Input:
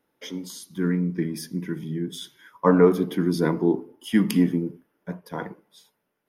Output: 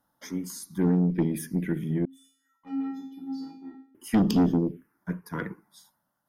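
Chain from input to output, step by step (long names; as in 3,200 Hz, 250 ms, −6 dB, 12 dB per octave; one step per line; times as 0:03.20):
phaser swept by the level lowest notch 410 Hz, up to 2,100 Hz, full sweep at −19.5 dBFS
tube saturation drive 20 dB, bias 0.3
0:02.05–0:03.95: tuned comb filter 270 Hz, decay 0.54 s, harmonics odd, mix 100%
level +4 dB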